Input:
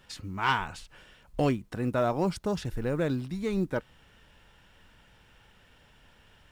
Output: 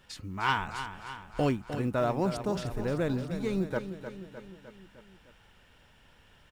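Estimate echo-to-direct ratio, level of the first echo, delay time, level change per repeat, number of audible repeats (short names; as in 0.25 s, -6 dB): -8.0 dB, -10.0 dB, 0.305 s, -4.5 dB, 5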